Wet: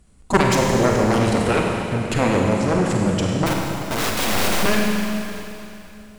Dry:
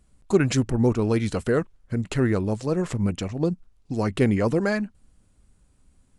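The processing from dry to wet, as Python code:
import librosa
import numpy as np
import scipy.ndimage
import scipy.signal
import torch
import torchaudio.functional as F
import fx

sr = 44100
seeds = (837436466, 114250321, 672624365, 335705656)

y = fx.cheby_harmonics(x, sr, harmonics=(7,), levels_db=(-7,), full_scale_db=-5.5)
y = fx.overflow_wrap(y, sr, gain_db=20.5, at=(3.46, 4.63))
y = fx.rev_schroeder(y, sr, rt60_s=2.9, comb_ms=33, drr_db=-1.0)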